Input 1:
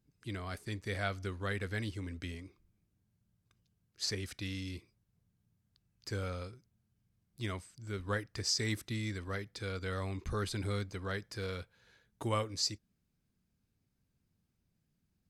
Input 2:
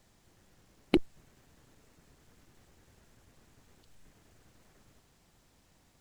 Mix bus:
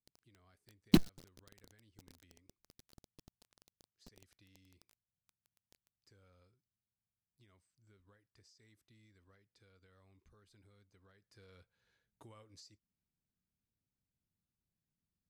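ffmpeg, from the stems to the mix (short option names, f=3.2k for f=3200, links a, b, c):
-filter_complex "[0:a]alimiter=level_in=6dB:limit=-24dB:level=0:latency=1:release=357,volume=-6dB,acompressor=threshold=-42dB:ratio=3,volume=-13.5dB,afade=t=in:st=11.07:d=0.68:silence=0.334965[a];[1:a]firequalizer=gain_entry='entry(100,0);entry(170,10);entry(300,-4);entry(610,-29);entry(2300,-10);entry(4400,7);entry(12000,-18)':delay=0.05:min_phase=1,acrusher=bits=6:dc=4:mix=0:aa=0.000001,volume=1.5dB[b];[a][b]amix=inputs=2:normalize=0"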